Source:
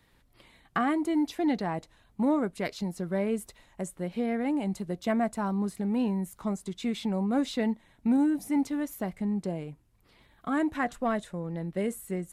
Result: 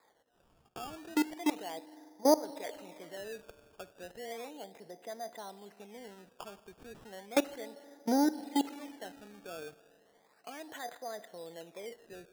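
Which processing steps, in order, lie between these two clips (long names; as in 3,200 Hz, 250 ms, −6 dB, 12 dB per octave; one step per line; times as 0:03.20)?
output level in coarse steps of 24 dB
loudspeaker in its box 450–2,000 Hz, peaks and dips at 460 Hz +7 dB, 710 Hz +7 dB, 1,200 Hz −6 dB, 1,900 Hz +7 dB
spring reverb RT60 2.5 s, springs 39/49 ms, chirp 50 ms, DRR 15 dB
sample-and-hold swept by an LFO 15×, swing 100% 0.34 Hz
level +5.5 dB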